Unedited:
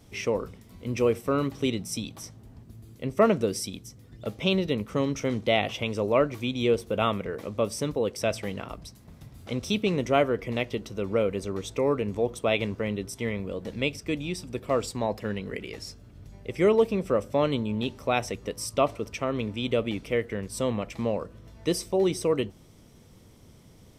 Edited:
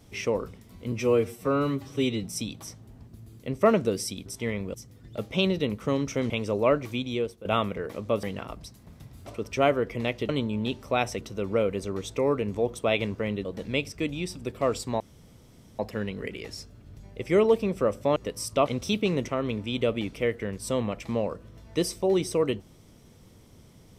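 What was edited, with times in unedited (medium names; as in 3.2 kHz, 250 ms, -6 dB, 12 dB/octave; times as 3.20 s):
0.92–1.80 s: stretch 1.5×
5.38–5.79 s: delete
6.41–6.94 s: fade out, to -16.5 dB
7.72–8.44 s: delete
9.48–10.09 s: swap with 18.88–19.18 s
13.05–13.53 s: move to 3.82 s
15.08 s: insert room tone 0.79 s
17.45–18.37 s: move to 10.81 s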